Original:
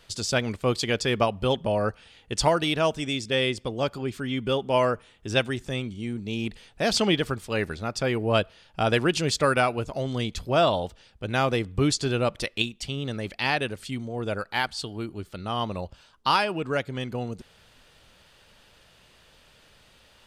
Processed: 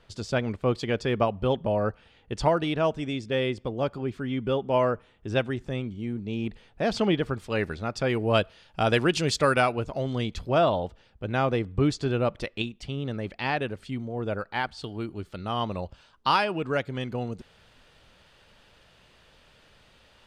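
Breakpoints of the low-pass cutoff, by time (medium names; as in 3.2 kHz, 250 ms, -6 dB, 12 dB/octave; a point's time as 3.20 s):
low-pass 6 dB/octave
1.4 kHz
from 7.34 s 3.4 kHz
from 8.10 s 7.9 kHz
from 9.72 s 3 kHz
from 10.58 s 1.6 kHz
from 14.84 s 4.1 kHz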